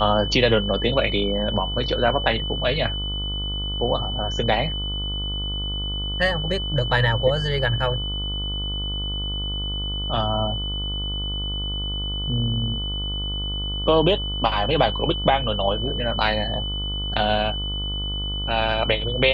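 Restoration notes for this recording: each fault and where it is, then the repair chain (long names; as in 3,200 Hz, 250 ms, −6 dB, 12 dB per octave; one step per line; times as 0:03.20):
mains buzz 50 Hz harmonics 29 −29 dBFS
whistle 3,000 Hz −28 dBFS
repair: hum removal 50 Hz, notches 29
notch filter 3,000 Hz, Q 30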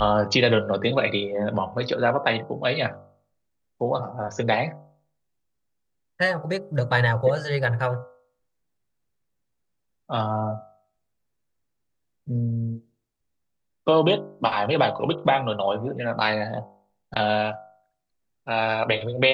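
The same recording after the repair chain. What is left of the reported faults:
none of them is left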